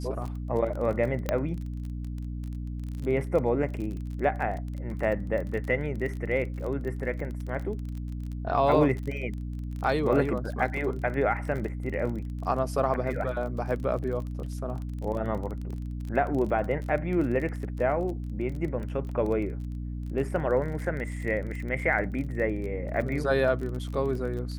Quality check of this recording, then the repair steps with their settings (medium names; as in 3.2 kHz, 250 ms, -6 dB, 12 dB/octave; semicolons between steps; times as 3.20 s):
crackle 28 per s -34 dBFS
hum 60 Hz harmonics 5 -34 dBFS
1.29 s: pop -12 dBFS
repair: de-click; de-hum 60 Hz, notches 5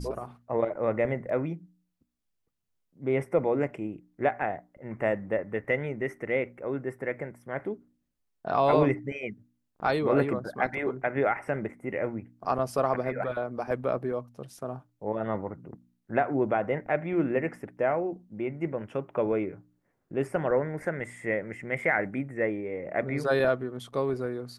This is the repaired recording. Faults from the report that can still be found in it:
1.29 s: pop